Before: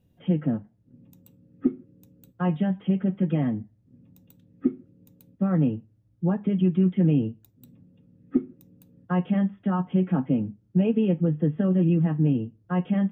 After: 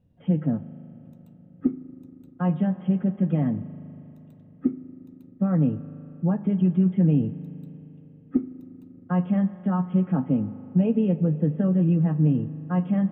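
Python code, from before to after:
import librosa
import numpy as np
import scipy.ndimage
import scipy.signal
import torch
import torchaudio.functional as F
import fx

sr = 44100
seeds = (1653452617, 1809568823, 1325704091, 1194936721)

y = fx.lowpass(x, sr, hz=1200.0, slope=6)
y = fx.peak_eq(y, sr, hz=360.0, db=-6.0, octaves=0.4)
y = fx.rev_spring(y, sr, rt60_s=3.5, pass_ms=(39,), chirp_ms=75, drr_db=14.5)
y = F.gain(torch.from_numpy(y), 1.5).numpy()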